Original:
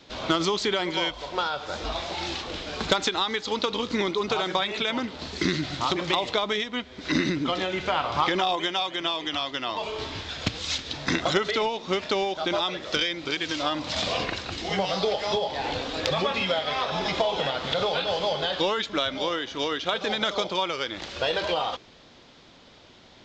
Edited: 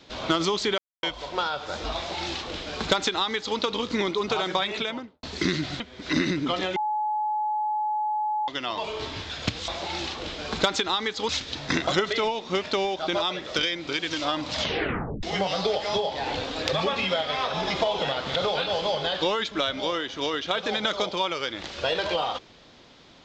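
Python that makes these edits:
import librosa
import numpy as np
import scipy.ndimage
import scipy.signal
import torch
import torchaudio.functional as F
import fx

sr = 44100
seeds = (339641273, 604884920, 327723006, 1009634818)

y = fx.studio_fade_out(x, sr, start_s=4.74, length_s=0.49)
y = fx.edit(y, sr, fx.silence(start_s=0.78, length_s=0.25),
    fx.duplicate(start_s=1.96, length_s=1.61, to_s=10.67),
    fx.cut(start_s=5.8, length_s=0.99),
    fx.bleep(start_s=7.75, length_s=1.72, hz=851.0, db=-23.5),
    fx.tape_stop(start_s=13.96, length_s=0.65), tone=tone)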